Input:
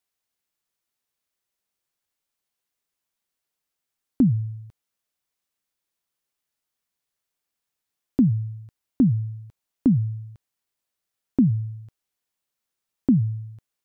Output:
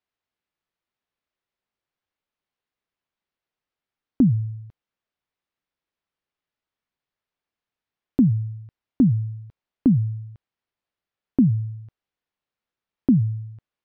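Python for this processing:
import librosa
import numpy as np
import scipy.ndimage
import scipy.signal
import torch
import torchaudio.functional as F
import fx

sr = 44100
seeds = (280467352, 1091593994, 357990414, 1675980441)

y = fx.air_absorb(x, sr, metres=230.0)
y = y * librosa.db_to_amplitude(1.5)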